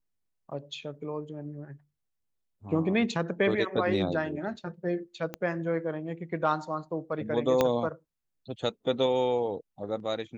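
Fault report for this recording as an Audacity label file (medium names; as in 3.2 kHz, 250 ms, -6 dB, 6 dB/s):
5.340000	5.340000	pop -20 dBFS
7.610000	7.610000	pop -10 dBFS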